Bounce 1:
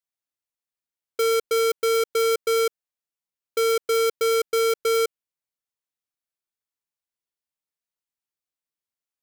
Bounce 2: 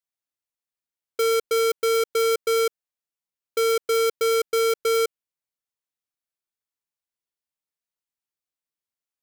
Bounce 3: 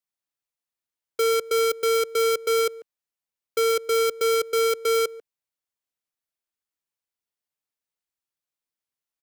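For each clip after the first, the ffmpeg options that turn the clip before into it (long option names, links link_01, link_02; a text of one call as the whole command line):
ffmpeg -i in.wav -af anull out.wav
ffmpeg -i in.wav -filter_complex "[0:a]asplit=2[link_01][link_02];[link_02]adelay=140,highpass=300,lowpass=3400,asoftclip=type=hard:threshold=-29dB,volume=-8dB[link_03];[link_01][link_03]amix=inputs=2:normalize=0,acrossover=split=180|4600[link_04][link_05][link_06];[link_04]acrusher=samples=32:mix=1:aa=0.000001[link_07];[link_07][link_05][link_06]amix=inputs=3:normalize=0" out.wav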